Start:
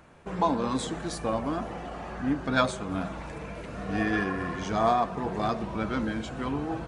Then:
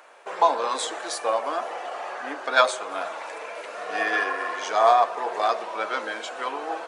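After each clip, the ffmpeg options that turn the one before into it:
-af "highpass=f=500:w=0.5412,highpass=f=500:w=1.3066,volume=7dB"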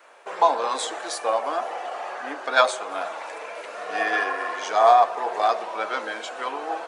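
-af "adynamicequalizer=threshold=0.02:dfrequency=760:dqfactor=4.5:tfrequency=760:tqfactor=4.5:attack=5:release=100:ratio=0.375:range=2:mode=boostabove:tftype=bell"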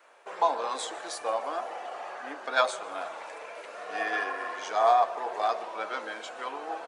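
-filter_complex "[0:a]asplit=6[a][b][c][d][e][f];[b]adelay=151,afreqshift=-43,volume=-22.5dB[g];[c]adelay=302,afreqshift=-86,volume=-26.7dB[h];[d]adelay=453,afreqshift=-129,volume=-30.8dB[i];[e]adelay=604,afreqshift=-172,volume=-35dB[j];[f]adelay=755,afreqshift=-215,volume=-39.1dB[k];[a][g][h][i][j][k]amix=inputs=6:normalize=0,volume=-6.5dB"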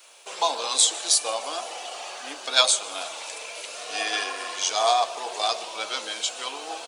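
-af "aexciter=amount=8.7:drive=3.3:freq=2.6k"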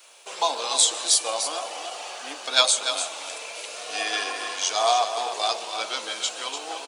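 -af "aecho=1:1:294:0.376"

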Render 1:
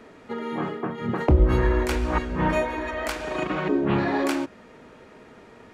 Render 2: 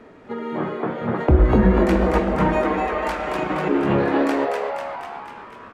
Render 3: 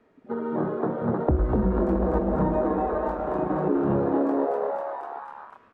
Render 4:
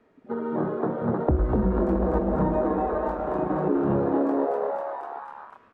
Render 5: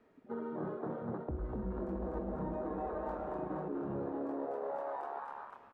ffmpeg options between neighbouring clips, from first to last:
-filter_complex "[0:a]highshelf=f=3.1k:g=-10.5,asplit=9[a][b][c][d][e][f][g][h][i];[b]adelay=247,afreqshift=140,volume=-4dB[j];[c]adelay=494,afreqshift=280,volume=-8.6dB[k];[d]adelay=741,afreqshift=420,volume=-13.2dB[l];[e]adelay=988,afreqshift=560,volume=-17.7dB[m];[f]adelay=1235,afreqshift=700,volume=-22.3dB[n];[g]adelay=1482,afreqshift=840,volume=-26.9dB[o];[h]adelay=1729,afreqshift=980,volume=-31.5dB[p];[i]adelay=1976,afreqshift=1120,volume=-36.1dB[q];[a][j][k][l][m][n][o][p][q]amix=inputs=9:normalize=0,volume=2.5dB"
-filter_complex "[0:a]acrossover=split=860|2300[a][b][c];[a]acompressor=threshold=-20dB:ratio=4[d];[b]acompressor=threshold=-39dB:ratio=4[e];[c]acompressor=threshold=-49dB:ratio=4[f];[d][e][f]amix=inputs=3:normalize=0,afwtdn=0.0251"
-af anull
-filter_complex "[0:a]areverse,acompressor=threshold=-31dB:ratio=6,areverse,asplit=2[a][b];[b]adelay=243,lowpass=f=2k:p=1,volume=-15dB,asplit=2[c][d];[d]adelay=243,lowpass=f=2k:p=1,volume=0.44,asplit=2[e][f];[f]adelay=243,lowpass=f=2k:p=1,volume=0.44,asplit=2[g][h];[h]adelay=243,lowpass=f=2k:p=1,volume=0.44[i];[a][c][e][g][i]amix=inputs=5:normalize=0,volume=-5dB"

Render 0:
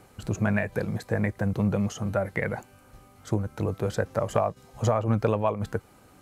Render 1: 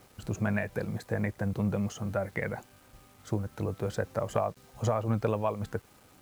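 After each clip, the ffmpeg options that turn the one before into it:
-af "acrusher=bits=8:mix=0:aa=0.000001,volume=-4.5dB"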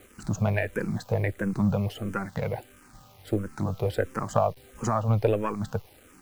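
-filter_complex "[0:a]aeval=exprs='if(lt(val(0),0),0.708*val(0),val(0))':c=same,asplit=2[a][b];[b]afreqshift=-1.5[c];[a][c]amix=inputs=2:normalize=1,volume=8dB"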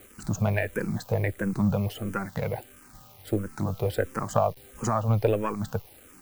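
-af "highshelf=f=11k:g=11"

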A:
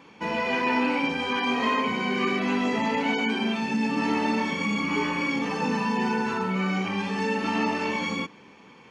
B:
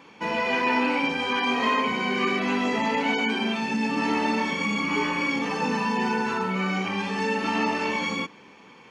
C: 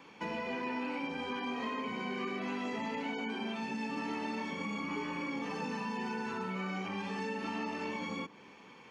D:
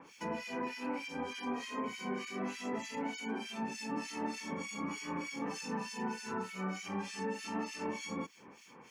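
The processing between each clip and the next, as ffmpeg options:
-af "lowshelf=f=260:g=-5,volume=2dB"
-filter_complex "[0:a]acrossover=split=410|1300[a][b][c];[a]acompressor=threshold=-34dB:ratio=4[d];[b]acompressor=threshold=-38dB:ratio=4[e];[c]acompressor=threshold=-40dB:ratio=4[f];[d][e][f]amix=inputs=3:normalize=0,volume=-5dB"
-filter_complex "[0:a]aexciter=amount=4.9:drive=3.5:freq=5.3k,acrossover=split=1900[a][b];[a]aeval=exprs='val(0)*(1-1/2+1/2*cos(2*PI*3.3*n/s))':c=same[c];[b]aeval=exprs='val(0)*(1-1/2-1/2*cos(2*PI*3.3*n/s))':c=same[d];[c][d]amix=inputs=2:normalize=0,volume=2.5dB"

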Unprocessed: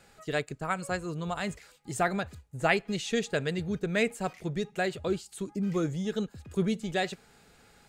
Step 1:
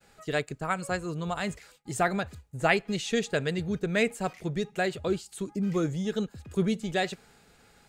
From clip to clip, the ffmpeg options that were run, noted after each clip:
-af "agate=range=-33dB:threshold=-56dB:ratio=3:detection=peak,volume=1.5dB"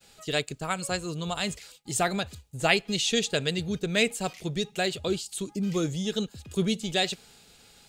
-af "highshelf=f=2.4k:t=q:w=1.5:g=7.5"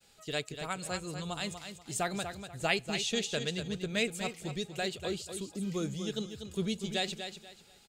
-af "aecho=1:1:242|484|726:0.376|0.101|0.0274,volume=-7dB"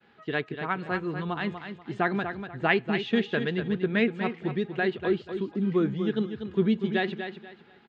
-af "highpass=120,equalizer=f=230:t=q:w=4:g=6,equalizer=f=360:t=q:w=4:g=6,equalizer=f=580:t=q:w=4:g=-6,equalizer=f=1k:t=q:w=4:g=4,equalizer=f=1.7k:t=q:w=4:g=6,equalizer=f=2.5k:t=q:w=4:g=-5,lowpass=f=2.7k:w=0.5412,lowpass=f=2.7k:w=1.3066,volume=6.5dB"

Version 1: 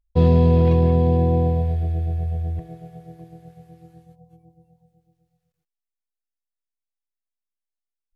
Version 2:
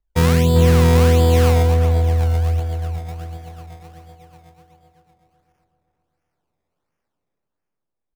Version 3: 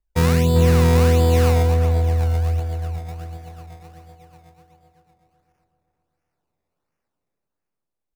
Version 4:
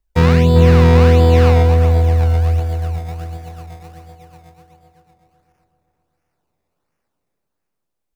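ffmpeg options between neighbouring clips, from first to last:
-filter_complex "[0:a]acrossover=split=190|970[a][b][c];[c]dynaudnorm=f=200:g=11:m=15dB[d];[a][b][d]amix=inputs=3:normalize=0,acrusher=samples=21:mix=1:aa=0.000001:lfo=1:lforange=21:lforate=1.4,asplit=2[e][f];[f]adelay=388,lowpass=f=1.1k:p=1,volume=-5dB,asplit=2[g][h];[h]adelay=388,lowpass=f=1.1k:p=1,volume=0.45,asplit=2[i][j];[j]adelay=388,lowpass=f=1.1k:p=1,volume=0.45,asplit=2[k][l];[l]adelay=388,lowpass=f=1.1k:p=1,volume=0.45,asplit=2[m][n];[n]adelay=388,lowpass=f=1.1k:p=1,volume=0.45,asplit=2[o][p];[p]adelay=388,lowpass=f=1.1k:p=1,volume=0.45[q];[e][g][i][k][m][o][q]amix=inputs=7:normalize=0"
-af "bandreject=f=3.2k:w=13,volume=-2dB"
-filter_complex "[0:a]acrossover=split=4700[a][b];[b]acompressor=threshold=-47dB:ratio=4:attack=1:release=60[c];[a][c]amix=inputs=2:normalize=0,volume=5.5dB"

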